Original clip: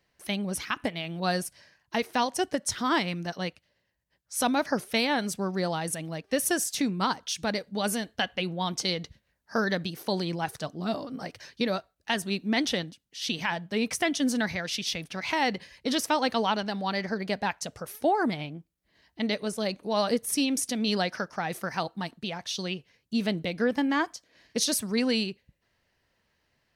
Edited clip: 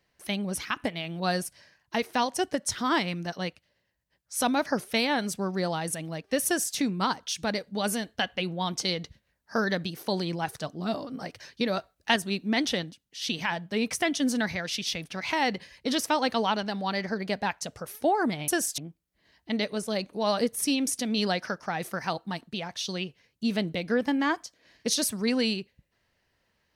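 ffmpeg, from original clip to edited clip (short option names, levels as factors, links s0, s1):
-filter_complex "[0:a]asplit=5[s0][s1][s2][s3][s4];[s0]atrim=end=11.772[s5];[s1]atrim=start=11.768:end=12.162,asetpts=PTS-STARTPTS,volume=1.68[s6];[s2]atrim=start=12.158:end=18.482[s7];[s3]atrim=start=6.458:end=6.762[s8];[s4]atrim=start=18.478[s9];[s5][s6]acrossfade=d=0.004:c1=hsin:c2=hsin[s10];[s10][s7]acrossfade=d=0.004:c1=hsin:c2=hsin[s11];[s11][s8]acrossfade=d=0.004:c1=hsin:c2=hsin[s12];[s12][s9]acrossfade=d=0.004:c1=hsin:c2=hsin"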